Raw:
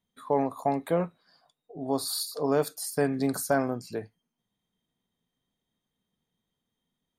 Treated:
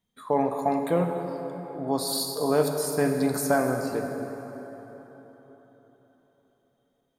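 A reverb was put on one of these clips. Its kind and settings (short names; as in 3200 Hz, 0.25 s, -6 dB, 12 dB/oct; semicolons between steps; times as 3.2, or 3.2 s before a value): plate-style reverb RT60 4.2 s, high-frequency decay 0.55×, DRR 3.5 dB; gain +1.5 dB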